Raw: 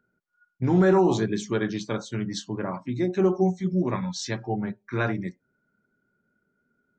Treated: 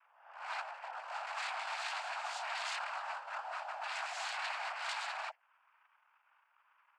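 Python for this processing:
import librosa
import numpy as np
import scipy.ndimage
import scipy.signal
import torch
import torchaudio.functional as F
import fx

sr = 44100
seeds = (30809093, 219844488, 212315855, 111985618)

y = fx.spec_swells(x, sr, rise_s=0.79)
y = scipy.signal.sosfilt(scipy.signal.butter(2, 1300.0, 'lowpass', fs=sr, output='sos'), y)
y = fx.over_compress(y, sr, threshold_db=-29.0, ratio=-1.0)
y = 10.0 ** (-33.5 / 20.0) * (np.abs((y / 10.0 ** (-33.5 / 20.0) + 3.0) % 4.0 - 2.0) - 1.0)
y = fx.noise_vocoder(y, sr, seeds[0], bands=8)
y = scipy.signal.sosfilt(scipy.signal.butter(12, 660.0, 'highpass', fs=sr, output='sos'), y)
y = y * librosa.db_to_amplitude(1.5)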